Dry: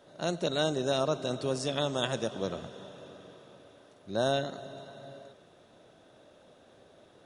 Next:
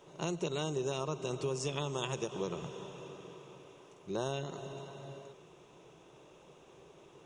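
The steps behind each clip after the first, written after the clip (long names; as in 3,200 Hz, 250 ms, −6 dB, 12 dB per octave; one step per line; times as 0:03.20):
EQ curve with evenly spaced ripples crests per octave 0.73, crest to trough 11 dB
downward compressor 3 to 1, threshold −33 dBFS, peak gain reduction 8.5 dB
every ending faded ahead of time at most 300 dB per second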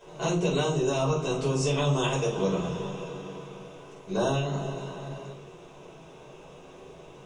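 convolution reverb, pre-delay 5 ms, DRR −6.5 dB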